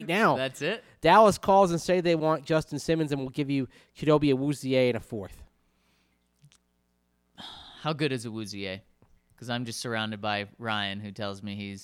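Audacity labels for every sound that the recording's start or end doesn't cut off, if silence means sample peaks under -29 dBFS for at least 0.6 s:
7.850000	8.740000	sound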